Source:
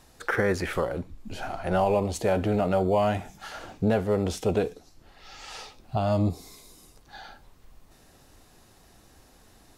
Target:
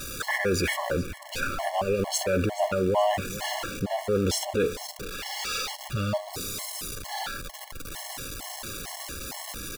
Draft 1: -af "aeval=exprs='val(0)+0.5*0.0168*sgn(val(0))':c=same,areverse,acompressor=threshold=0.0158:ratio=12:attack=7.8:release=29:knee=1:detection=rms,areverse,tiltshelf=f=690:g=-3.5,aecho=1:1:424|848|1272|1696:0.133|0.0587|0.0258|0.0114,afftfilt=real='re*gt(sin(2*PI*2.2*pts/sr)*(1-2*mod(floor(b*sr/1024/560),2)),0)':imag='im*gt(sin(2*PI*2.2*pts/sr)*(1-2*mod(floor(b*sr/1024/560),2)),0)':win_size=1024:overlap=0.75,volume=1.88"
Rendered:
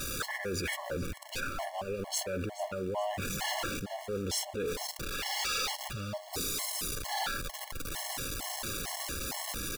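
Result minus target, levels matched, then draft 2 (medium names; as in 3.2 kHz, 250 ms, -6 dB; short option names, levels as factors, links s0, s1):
compression: peak gain reduction +10.5 dB
-af "aeval=exprs='val(0)+0.5*0.0168*sgn(val(0))':c=same,areverse,acompressor=threshold=0.0596:ratio=12:attack=7.8:release=29:knee=1:detection=rms,areverse,tiltshelf=f=690:g=-3.5,aecho=1:1:424|848|1272|1696:0.133|0.0587|0.0258|0.0114,afftfilt=real='re*gt(sin(2*PI*2.2*pts/sr)*(1-2*mod(floor(b*sr/1024/560),2)),0)':imag='im*gt(sin(2*PI*2.2*pts/sr)*(1-2*mod(floor(b*sr/1024/560),2)),0)':win_size=1024:overlap=0.75,volume=1.88"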